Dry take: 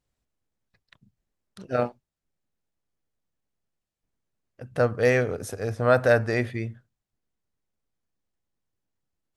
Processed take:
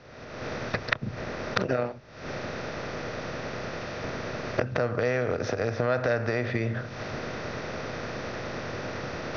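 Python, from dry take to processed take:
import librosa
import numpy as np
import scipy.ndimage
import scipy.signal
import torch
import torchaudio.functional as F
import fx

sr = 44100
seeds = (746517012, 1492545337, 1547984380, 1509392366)

y = fx.bin_compress(x, sr, power=0.6)
y = fx.recorder_agc(y, sr, target_db=-10.0, rise_db_per_s=63.0, max_gain_db=30)
y = scipy.signal.sosfilt(scipy.signal.butter(16, 6000.0, 'lowpass', fs=sr, output='sos'), y)
y = fx.band_squash(y, sr, depth_pct=40)
y = y * 10.0 ** (-7.5 / 20.0)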